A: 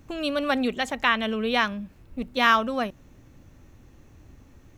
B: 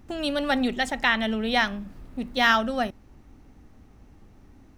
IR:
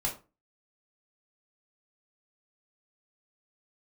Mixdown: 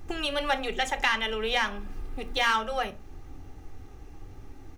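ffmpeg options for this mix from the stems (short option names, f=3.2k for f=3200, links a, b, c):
-filter_complex "[0:a]asoftclip=type=tanh:threshold=-16.5dB,volume=-6dB,asplit=2[a][b];[b]volume=-8.5dB[c];[1:a]aecho=1:1:2.5:0.61,acompressor=threshold=-28dB:ratio=6,volume=-1,volume=1dB,asplit=2[d][e];[e]volume=-14dB[f];[2:a]atrim=start_sample=2205[g];[c][f]amix=inputs=2:normalize=0[h];[h][g]afir=irnorm=-1:irlink=0[i];[a][d][i]amix=inputs=3:normalize=0"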